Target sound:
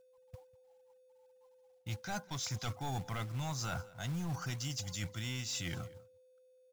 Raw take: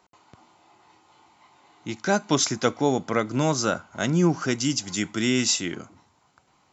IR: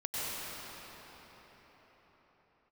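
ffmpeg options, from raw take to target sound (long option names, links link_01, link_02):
-filter_complex "[0:a]asplit=2[link_01][link_02];[link_02]aeval=exprs='0.531*sin(PI/2*2.24*val(0)/0.531)':channel_layout=same,volume=-6.5dB[link_03];[link_01][link_03]amix=inputs=2:normalize=0,afftfilt=real='re*gte(hypot(re,im),0.0224)':imag='im*gte(hypot(re,im),0.0224)':win_size=1024:overlap=0.75,aeval=exprs='val(0)+0.0794*sin(2*PI*510*n/s)':channel_layout=same,firequalizer=gain_entry='entry(100,0);entry(220,-20);entry(500,-29);entry(730,-10);entry(1200,-15);entry(2300,-11);entry(3600,-7);entry(7300,-9)':delay=0.05:min_phase=1,areverse,acompressor=threshold=-34dB:ratio=12,areverse,asoftclip=type=tanh:threshold=-30.5dB,highshelf=frequency=5100:gain=-4.5,agate=range=-33dB:threshold=-44dB:ratio=3:detection=peak,acrusher=bits=4:mode=log:mix=0:aa=0.000001,aecho=1:1:196:0.0841,volume=1dB"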